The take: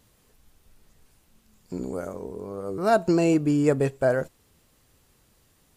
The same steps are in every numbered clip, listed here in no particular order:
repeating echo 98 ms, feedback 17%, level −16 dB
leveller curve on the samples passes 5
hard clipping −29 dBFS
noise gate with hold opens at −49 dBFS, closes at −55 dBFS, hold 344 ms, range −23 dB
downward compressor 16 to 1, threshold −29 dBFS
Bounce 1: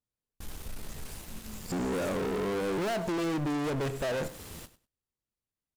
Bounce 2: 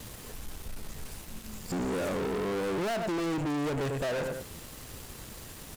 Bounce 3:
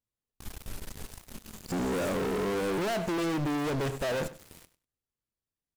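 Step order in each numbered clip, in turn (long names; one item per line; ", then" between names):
noise gate with hold, then downward compressor, then hard clipping, then leveller curve on the samples, then repeating echo
repeating echo, then downward compressor, then hard clipping, then leveller curve on the samples, then noise gate with hold
noise gate with hold, then downward compressor, then leveller curve on the samples, then hard clipping, then repeating echo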